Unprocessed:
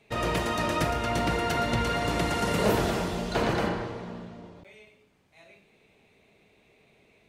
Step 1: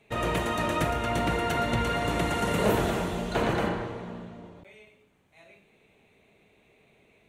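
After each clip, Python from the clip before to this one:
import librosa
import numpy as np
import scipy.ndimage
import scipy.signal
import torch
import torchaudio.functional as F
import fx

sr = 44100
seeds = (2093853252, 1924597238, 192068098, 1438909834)

y = fx.peak_eq(x, sr, hz=5000.0, db=-10.0, octaves=0.39)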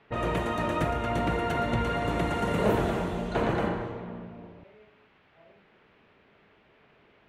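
y = fx.env_lowpass(x, sr, base_hz=910.0, full_db=-27.0)
y = fx.high_shelf(y, sr, hz=3100.0, db=-10.0)
y = fx.dmg_noise_band(y, sr, seeds[0], low_hz=240.0, high_hz=2700.0, level_db=-64.0)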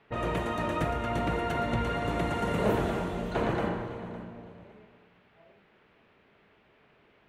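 y = fx.echo_feedback(x, sr, ms=558, feedback_pct=26, wet_db=-17)
y = y * librosa.db_to_amplitude(-2.0)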